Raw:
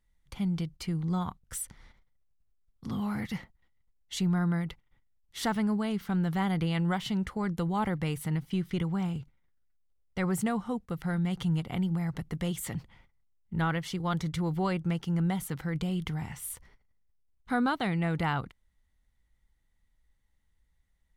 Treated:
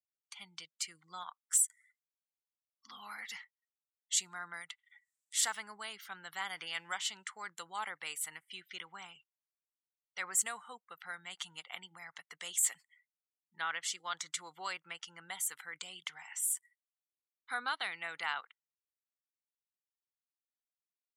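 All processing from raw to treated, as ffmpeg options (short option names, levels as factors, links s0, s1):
-filter_complex "[0:a]asettb=1/sr,asplit=3[s0][s1][s2];[s0]atrim=end=4.544[s3];[s1]atrim=start=4.54:end=5.41,asetpts=PTS-STARTPTS,afade=t=in:d=0.004:c=qsin,afade=t=out:st=0.866:d=0.004:c=qsin,highpass=98,equalizer=f=9400:t=o:w=0.82:g=5.5,acompressor=mode=upward:threshold=0.0158:ratio=2.5:attack=3.2:release=140:knee=2.83:detection=peak[s4];[s2]atrim=start=5.406[s5];[s3][s4]acrossfade=d=0.004:c1=hsin:c2=qsin[s6];[s6][s5]acrossfade=d=0.004:c1=qsin:c2=hsin,asettb=1/sr,asplit=3[s7][s8][s9];[s7]atrim=end=6.454[s10];[s8]atrim=start=6.45:end=6.98,asetpts=PTS-STARTPTS,afade=t=in:d=0.004:c=qsin,afade=t=out:st=0.526:d=0.004:c=qsin,aeval=exprs='val(0)+0.5*0.00501*sgn(val(0))':c=same,bandreject=f=4000:w=8.2[s11];[s9]atrim=start=6.976[s12];[s10][s11]acrossfade=d=0.004:c1=hsin:c2=qsin[s13];[s13][s12]acrossfade=d=0.004:c1=qsin:c2=hsin,highpass=1400,afftdn=nr=34:nf=-56,equalizer=f=7500:w=2:g=14"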